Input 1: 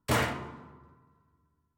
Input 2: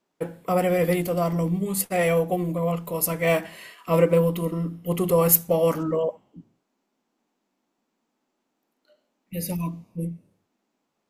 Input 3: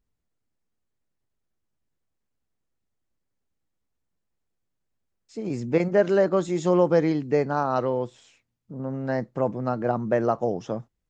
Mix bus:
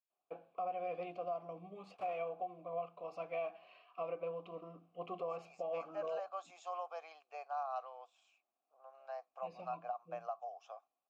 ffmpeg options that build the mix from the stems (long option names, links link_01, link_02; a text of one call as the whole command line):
ffmpeg -i stem1.wav -i stem2.wav -i stem3.wav -filter_complex "[0:a]adelay=1900,volume=-13dB[link_01];[1:a]lowpass=frequency=5400:width=0.5412,lowpass=frequency=5400:width=1.3066,adelay=100,volume=-3.5dB[link_02];[2:a]highpass=frequency=660:width=0.5412,highpass=frequency=660:width=1.3066,aemphasis=mode=production:type=riaa,volume=-4.5dB[link_03];[link_01][link_02][link_03]amix=inputs=3:normalize=0,asplit=3[link_04][link_05][link_06];[link_04]bandpass=frequency=730:width_type=q:width=8,volume=0dB[link_07];[link_05]bandpass=frequency=1090:width_type=q:width=8,volume=-6dB[link_08];[link_06]bandpass=frequency=2440:width_type=q:width=8,volume=-9dB[link_09];[link_07][link_08][link_09]amix=inputs=3:normalize=0,alimiter=level_in=7dB:limit=-24dB:level=0:latency=1:release=340,volume=-7dB" out.wav